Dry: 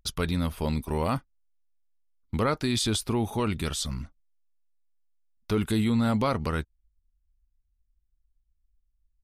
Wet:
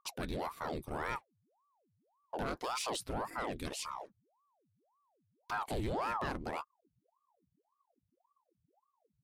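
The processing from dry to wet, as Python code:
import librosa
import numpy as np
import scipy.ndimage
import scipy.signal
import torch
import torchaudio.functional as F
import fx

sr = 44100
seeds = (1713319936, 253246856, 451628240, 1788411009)

y = np.clip(10.0 ** (21.0 / 20.0) * x, -1.0, 1.0) / 10.0 ** (21.0 / 20.0)
y = fx.ring_lfo(y, sr, carrier_hz=630.0, swing_pct=85, hz=1.8)
y = y * librosa.db_to_amplitude(-7.5)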